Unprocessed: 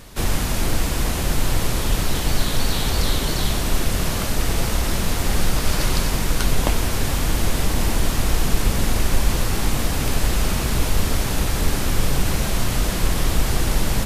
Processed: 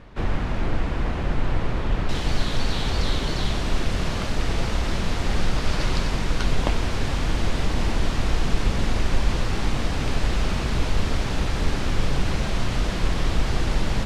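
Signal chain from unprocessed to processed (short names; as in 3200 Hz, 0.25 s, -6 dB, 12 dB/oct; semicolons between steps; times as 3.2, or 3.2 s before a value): LPF 2200 Hz 12 dB/oct, from 2.09 s 4700 Hz; gain -2.5 dB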